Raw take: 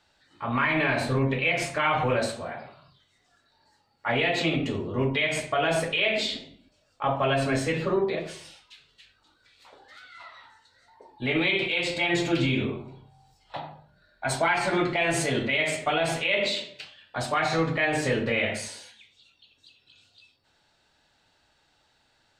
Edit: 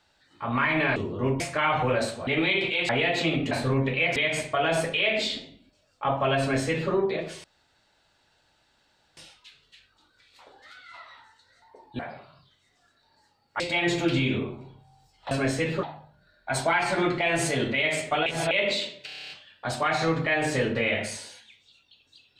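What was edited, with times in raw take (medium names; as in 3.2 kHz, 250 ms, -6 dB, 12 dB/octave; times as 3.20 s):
0.96–1.61 s: swap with 4.71–5.15 s
2.48–4.09 s: swap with 11.25–11.87 s
7.39–7.91 s: copy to 13.58 s
8.43 s: insert room tone 1.73 s
16.01–16.26 s: reverse
16.81 s: stutter 0.03 s, 9 plays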